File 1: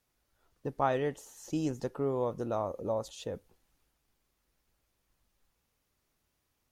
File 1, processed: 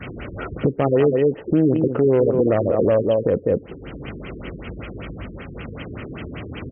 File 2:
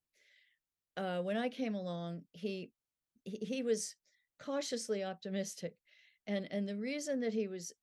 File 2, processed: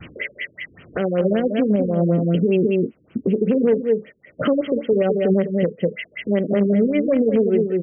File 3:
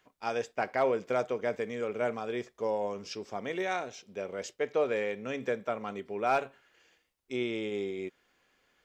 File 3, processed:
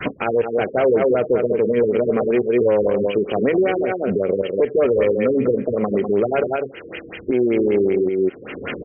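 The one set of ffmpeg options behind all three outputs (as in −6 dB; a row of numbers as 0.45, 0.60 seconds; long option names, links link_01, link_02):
-filter_complex "[0:a]bandreject=frequency=1700:width=12,aecho=1:1:201:0.335,asplit=2[link_01][link_02];[link_02]acrusher=bits=4:mix=0:aa=0.000001,volume=-11.5dB[link_03];[link_01][link_03]amix=inputs=2:normalize=0,acompressor=mode=upward:threshold=-39dB:ratio=2.5,aeval=exprs='0.211*(cos(1*acos(clip(val(0)/0.211,-1,1)))-cos(1*PI/2))+0.0237*(cos(5*acos(clip(val(0)/0.211,-1,1)))-cos(5*PI/2))+0.0266*(cos(6*acos(clip(val(0)/0.211,-1,1)))-cos(6*PI/2))':channel_layout=same,highpass=86,equalizer=frequency=900:width=1.6:gain=-12,acompressor=threshold=-45dB:ratio=3,adynamicequalizer=threshold=0.00224:dfrequency=450:dqfactor=0.95:tfrequency=450:tqfactor=0.95:attack=5:release=100:ratio=0.375:range=3:mode=boostabove:tftype=bell,alimiter=level_in=35.5dB:limit=-1dB:release=50:level=0:latency=1,afftfilt=real='re*lt(b*sr/1024,460*pow(3300/460,0.5+0.5*sin(2*PI*5.2*pts/sr)))':imag='im*lt(b*sr/1024,460*pow(3300/460,0.5+0.5*sin(2*PI*5.2*pts/sr)))':win_size=1024:overlap=0.75,volume=-8dB"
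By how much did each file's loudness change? +15.5, +19.0, +14.5 LU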